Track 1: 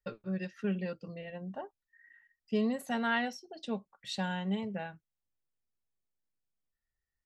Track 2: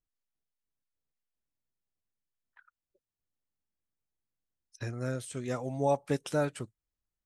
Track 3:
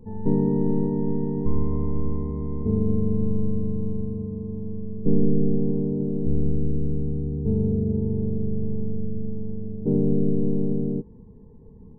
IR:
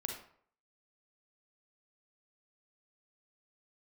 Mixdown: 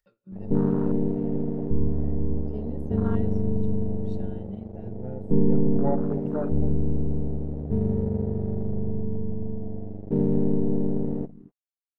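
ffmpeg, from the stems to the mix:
-filter_complex "[0:a]acompressor=mode=upward:threshold=-44dB:ratio=2.5,volume=-7.5dB,asplit=2[link_01][link_02];[link_02]volume=-16.5dB[link_03];[1:a]afwtdn=0.00708,asplit=2[link_04][link_05];[link_05]adelay=5.6,afreqshift=0.56[link_06];[link_04][link_06]amix=inputs=2:normalize=1,volume=-4dB,asplit=3[link_07][link_08][link_09];[link_08]volume=-5.5dB[link_10];[link_09]volume=-10dB[link_11];[2:a]aeval=exprs='sgn(val(0))*max(abs(val(0))-0.0224,0)':channel_layout=same,adelay=250,volume=0dB,asplit=2[link_12][link_13];[link_13]volume=-17dB[link_14];[3:a]atrim=start_sample=2205[link_15];[link_03][link_10]amix=inputs=2:normalize=0[link_16];[link_16][link_15]afir=irnorm=-1:irlink=0[link_17];[link_11][link_14]amix=inputs=2:normalize=0,aecho=0:1:248:1[link_18];[link_01][link_07][link_12][link_17][link_18]amix=inputs=5:normalize=0,afwtdn=0.0251"

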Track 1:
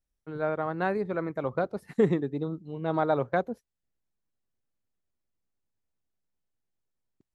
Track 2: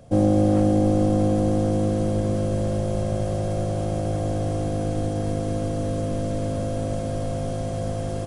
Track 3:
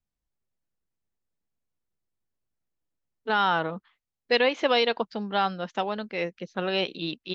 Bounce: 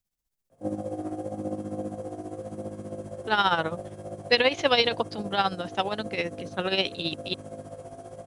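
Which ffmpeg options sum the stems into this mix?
ffmpeg -i stem1.wav -i stem2.wav -i stem3.wav -filter_complex "[1:a]flanger=delay=18.5:depth=3.6:speed=0.87,highpass=frequency=460:poles=1,equalizer=frequency=3900:width_type=o:width=2:gain=-10,adelay=500,volume=-2.5dB[link_01];[2:a]highshelf=frequency=4000:gain=10.5,volume=2dB[link_02];[link_01][link_02]amix=inputs=2:normalize=0,tremolo=f=15:d=0.65" out.wav

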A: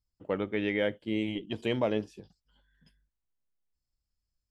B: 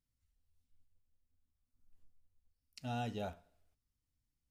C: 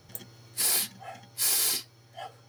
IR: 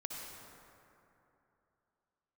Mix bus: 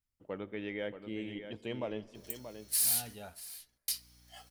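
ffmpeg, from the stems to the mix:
-filter_complex "[0:a]volume=-10dB,asplit=3[link_01][link_02][link_03];[link_02]volume=-17.5dB[link_04];[link_03]volume=-9dB[link_05];[1:a]equalizer=frequency=1700:width=0.87:gain=7.5,volume=-8dB[link_06];[2:a]lowpass=frequency=3000:poles=1,aderivative,aeval=exprs='val(0)+0.000501*(sin(2*PI*60*n/s)+sin(2*PI*2*60*n/s)/2+sin(2*PI*3*60*n/s)/3+sin(2*PI*4*60*n/s)/4+sin(2*PI*5*60*n/s)/5)':channel_layout=same,adelay=2150,volume=3dB,asplit=3[link_07][link_08][link_09];[link_07]atrim=end=3.15,asetpts=PTS-STARTPTS,afade=type=out:start_time=3.146:duration=0.004:curve=hsin[link_10];[link_08]atrim=start=3.15:end=3.88,asetpts=PTS-STARTPTS,volume=0[link_11];[link_09]atrim=start=3.88,asetpts=PTS-STARTPTS,afade=type=in:duration=0.004:curve=hsin[link_12];[link_10][link_11][link_12]concat=n=3:v=0:a=1,asplit=3[link_13][link_14][link_15];[link_14]volume=-19.5dB[link_16];[link_15]volume=-16.5dB[link_17];[link_06][link_13]amix=inputs=2:normalize=0,highshelf=frequency=6300:gain=7.5,alimiter=limit=-20.5dB:level=0:latency=1:release=87,volume=0dB[link_18];[3:a]atrim=start_sample=2205[link_19];[link_04][link_16]amix=inputs=2:normalize=0[link_20];[link_20][link_19]afir=irnorm=-1:irlink=0[link_21];[link_05][link_17]amix=inputs=2:normalize=0,aecho=0:1:630:1[link_22];[link_01][link_18][link_21][link_22]amix=inputs=4:normalize=0"

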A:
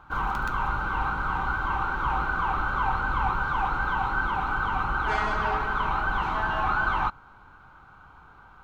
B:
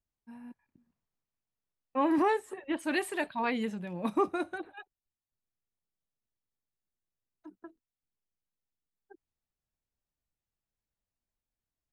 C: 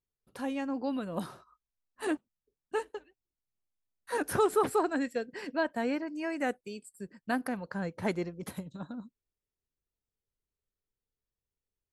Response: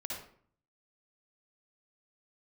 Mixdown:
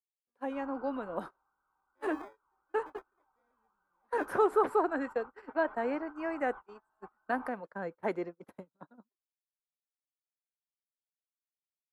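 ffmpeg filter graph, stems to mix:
-filter_complex "[0:a]lowpass=frequency=1800:poles=1,adelay=400,volume=-19dB[link_01];[1:a]acrusher=samples=31:mix=1:aa=0.000001,volume=-14.5dB[link_02];[2:a]volume=1.5dB[link_03];[link_01][link_02][link_03]amix=inputs=3:normalize=0,agate=range=-30dB:threshold=-36dB:ratio=16:detection=peak,acrossover=split=300 2000:gain=0.158 1 0.141[link_04][link_05][link_06];[link_04][link_05][link_06]amix=inputs=3:normalize=0"

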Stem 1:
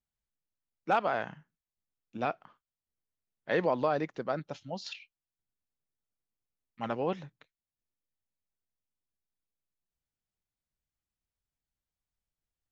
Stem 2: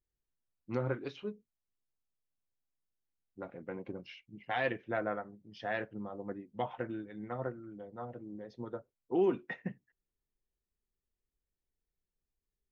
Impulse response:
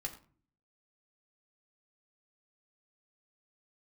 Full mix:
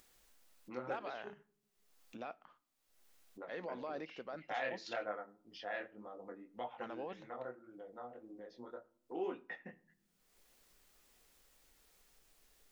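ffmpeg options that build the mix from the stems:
-filter_complex "[0:a]alimiter=level_in=1dB:limit=-24dB:level=0:latency=1:release=22,volume=-1dB,acontrast=57,volume=-15dB,asplit=2[link_01][link_02];[link_02]volume=-15.5dB[link_03];[1:a]highpass=frequency=240:poles=1,flanger=delay=16.5:depth=8:speed=1.8,volume=-4.5dB,asplit=2[link_04][link_05];[link_05]volume=-7dB[link_06];[2:a]atrim=start_sample=2205[link_07];[link_03][link_06]amix=inputs=2:normalize=0[link_08];[link_08][link_07]afir=irnorm=-1:irlink=0[link_09];[link_01][link_04][link_09]amix=inputs=3:normalize=0,equalizer=frequency=100:width=0.65:gain=-12.5,acompressor=mode=upward:threshold=-45dB:ratio=2.5"

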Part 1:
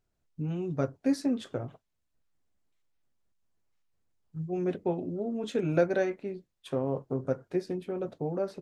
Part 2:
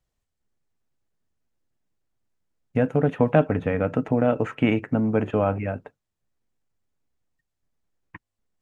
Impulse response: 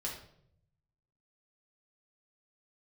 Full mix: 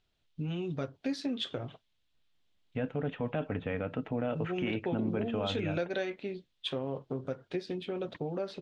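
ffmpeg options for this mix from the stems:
-filter_complex "[0:a]aemphasis=mode=production:type=75kf,acompressor=threshold=-33dB:ratio=2.5,volume=0dB[link_01];[1:a]volume=-10dB[link_02];[link_01][link_02]amix=inputs=2:normalize=0,lowpass=frequency=3400:width_type=q:width=3.1,alimiter=limit=-22.5dB:level=0:latency=1:release=16"

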